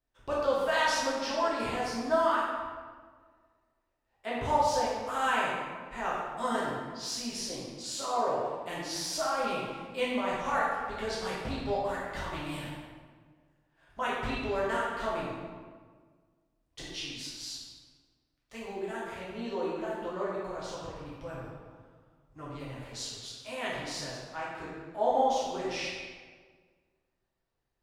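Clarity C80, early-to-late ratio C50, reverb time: 1.5 dB, -1.0 dB, 1.6 s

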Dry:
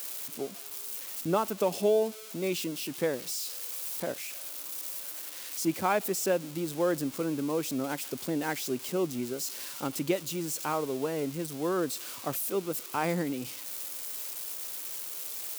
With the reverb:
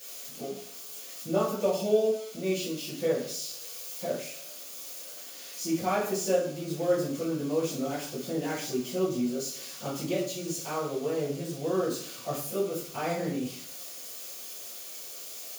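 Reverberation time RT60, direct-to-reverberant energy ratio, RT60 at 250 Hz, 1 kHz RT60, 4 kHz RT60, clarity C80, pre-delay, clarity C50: 0.60 s, -12.5 dB, 0.65 s, 0.60 s, 0.70 s, 9.0 dB, 3 ms, 5.0 dB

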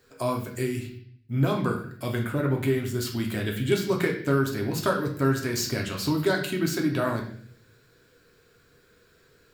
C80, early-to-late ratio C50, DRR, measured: 11.0 dB, 7.5 dB, 0.0 dB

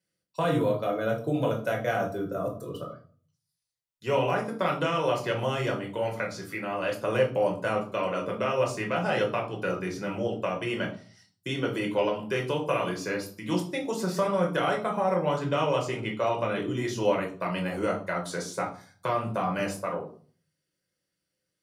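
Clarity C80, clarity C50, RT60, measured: 14.5 dB, 10.0 dB, 0.45 s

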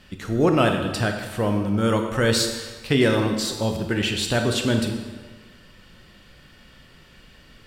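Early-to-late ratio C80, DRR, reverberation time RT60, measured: 7.5 dB, 4.0 dB, 1.5 s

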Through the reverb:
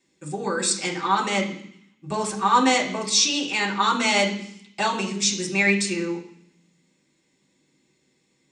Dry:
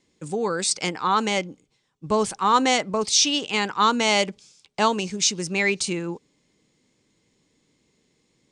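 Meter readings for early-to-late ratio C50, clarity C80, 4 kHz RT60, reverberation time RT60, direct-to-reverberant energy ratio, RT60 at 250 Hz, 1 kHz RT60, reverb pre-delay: 9.0 dB, 12.5 dB, 0.80 s, 0.65 s, -4.5 dB, 0.90 s, 0.65 s, 3 ms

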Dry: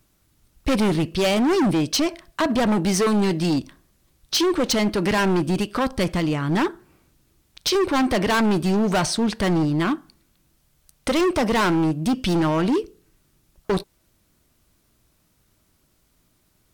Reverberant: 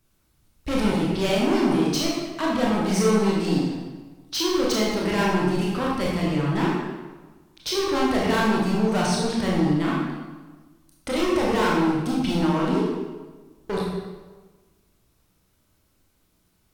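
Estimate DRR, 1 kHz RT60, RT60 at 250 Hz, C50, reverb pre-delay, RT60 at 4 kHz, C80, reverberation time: -5.0 dB, 1.3 s, 1.4 s, -1.0 dB, 22 ms, 0.95 s, 2.0 dB, 1.3 s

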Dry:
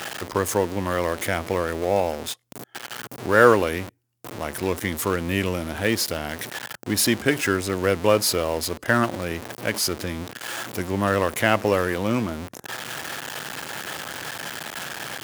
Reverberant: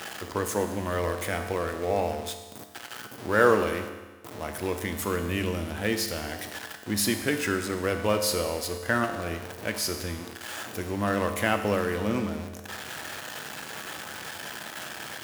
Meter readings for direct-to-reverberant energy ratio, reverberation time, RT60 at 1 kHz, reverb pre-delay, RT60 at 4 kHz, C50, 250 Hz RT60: 5.5 dB, 1.3 s, 1.3 s, 4 ms, 1.3 s, 8.0 dB, 1.3 s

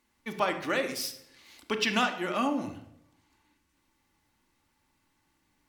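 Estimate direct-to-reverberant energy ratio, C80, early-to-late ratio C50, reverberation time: 4.5 dB, 13.0 dB, 9.5 dB, 0.75 s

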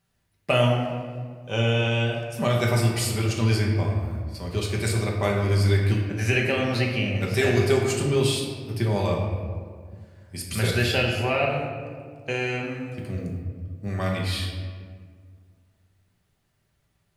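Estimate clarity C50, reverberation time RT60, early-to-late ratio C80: 3.0 dB, 1.9 s, 4.5 dB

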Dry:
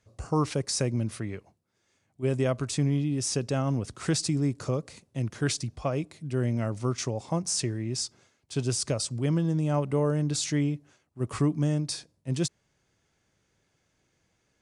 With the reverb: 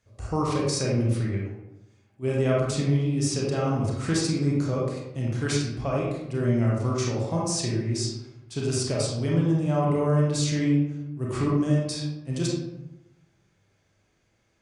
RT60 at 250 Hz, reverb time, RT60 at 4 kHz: 1.1 s, 0.95 s, 0.50 s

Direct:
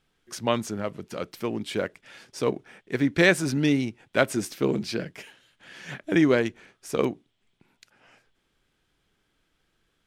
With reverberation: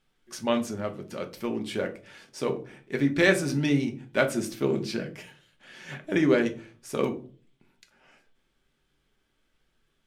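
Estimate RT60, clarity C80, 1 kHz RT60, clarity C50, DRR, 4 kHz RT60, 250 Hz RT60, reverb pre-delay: 0.40 s, 19.5 dB, 0.35 s, 14.5 dB, 3.5 dB, 0.25 s, 0.55 s, 3 ms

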